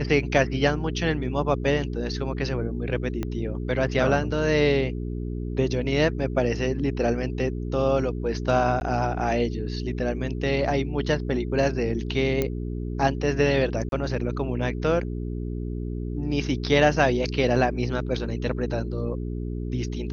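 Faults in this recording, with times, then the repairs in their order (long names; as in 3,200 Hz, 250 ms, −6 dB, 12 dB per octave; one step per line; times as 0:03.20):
mains hum 60 Hz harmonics 7 −30 dBFS
0:03.23: click −16 dBFS
0:08.80–0:08.81: drop-out 11 ms
0:12.42: click −11 dBFS
0:13.89–0:13.92: drop-out 32 ms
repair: click removal
hum removal 60 Hz, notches 7
repair the gap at 0:08.80, 11 ms
repair the gap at 0:13.89, 32 ms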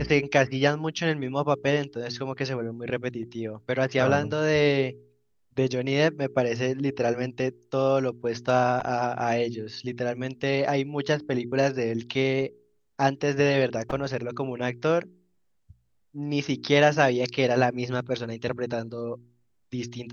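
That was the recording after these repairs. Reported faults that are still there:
0:03.23: click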